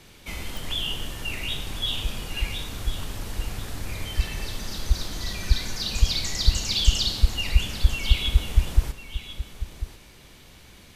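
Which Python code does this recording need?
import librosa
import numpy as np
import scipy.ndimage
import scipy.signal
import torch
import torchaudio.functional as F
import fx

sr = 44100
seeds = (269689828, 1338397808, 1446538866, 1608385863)

y = fx.fix_declick_ar(x, sr, threshold=10.0)
y = fx.fix_echo_inverse(y, sr, delay_ms=1045, level_db=-12.5)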